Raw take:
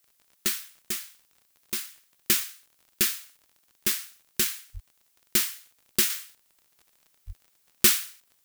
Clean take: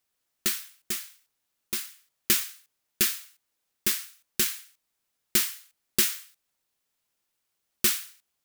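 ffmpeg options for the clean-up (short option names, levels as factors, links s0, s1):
-filter_complex "[0:a]adeclick=t=4,asplit=3[s0][s1][s2];[s0]afade=t=out:st=4.73:d=0.02[s3];[s1]highpass=f=140:w=0.5412,highpass=f=140:w=1.3066,afade=t=in:st=4.73:d=0.02,afade=t=out:st=4.85:d=0.02[s4];[s2]afade=t=in:st=4.85:d=0.02[s5];[s3][s4][s5]amix=inputs=3:normalize=0,asplit=3[s6][s7][s8];[s6]afade=t=out:st=7.26:d=0.02[s9];[s7]highpass=f=140:w=0.5412,highpass=f=140:w=1.3066,afade=t=in:st=7.26:d=0.02,afade=t=out:st=7.38:d=0.02[s10];[s8]afade=t=in:st=7.38:d=0.02[s11];[s9][s10][s11]amix=inputs=3:normalize=0,agate=range=0.0891:threshold=0.001,asetnsamples=n=441:p=0,asendcmd='6.1 volume volume -4.5dB',volume=1"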